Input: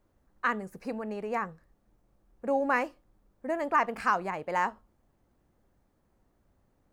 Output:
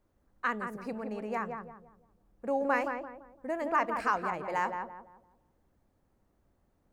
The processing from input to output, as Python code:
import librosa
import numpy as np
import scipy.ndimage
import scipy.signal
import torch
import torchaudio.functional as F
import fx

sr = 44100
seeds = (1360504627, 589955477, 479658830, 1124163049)

y = fx.echo_filtered(x, sr, ms=170, feedback_pct=37, hz=1300.0, wet_db=-4.5)
y = y * librosa.db_to_amplitude(-3.0)